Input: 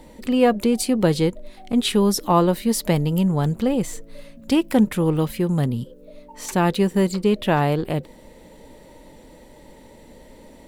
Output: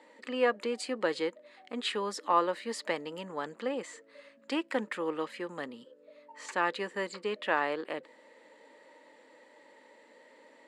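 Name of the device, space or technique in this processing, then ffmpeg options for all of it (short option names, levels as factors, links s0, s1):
phone speaker on a table: -af "highpass=f=340:w=0.5412,highpass=f=340:w=1.3066,equalizer=f=380:t=q:w=4:g=-8,equalizer=f=710:t=q:w=4:g=-6,equalizer=f=1200:t=q:w=4:g=4,equalizer=f=1800:t=q:w=4:g=7,equalizer=f=3600:t=q:w=4:g=-4,equalizer=f=5800:t=q:w=4:g=-10,lowpass=f=7000:w=0.5412,lowpass=f=7000:w=1.3066,volume=0.447"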